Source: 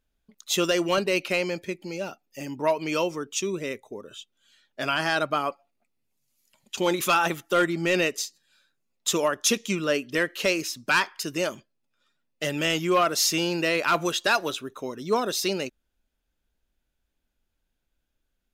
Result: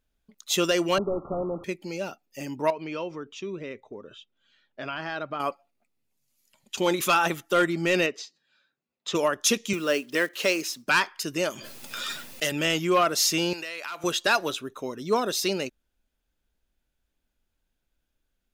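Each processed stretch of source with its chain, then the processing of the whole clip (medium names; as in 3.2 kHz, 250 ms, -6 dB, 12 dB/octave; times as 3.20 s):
0.98–1.64 s: one-bit delta coder 16 kbps, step -37 dBFS + brick-wall FIR low-pass 1.4 kHz
2.70–5.40 s: compression 1.5:1, threshold -38 dBFS + distance through air 200 m
8.06–9.15 s: high-pass 140 Hz 6 dB/octave + distance through air 170 m
9.73–10.87 s: block-companded coder 5-bit + high-pass 220 Hz
11.50–12.52 s: tilt EQ +2 dB/octave + swell ahead of each attack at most 20 dB/s
13.53–14.04 s: high-pass 1.3 kHz 6 dB/octave + compression, threshold -31 dBFS
whole clip: none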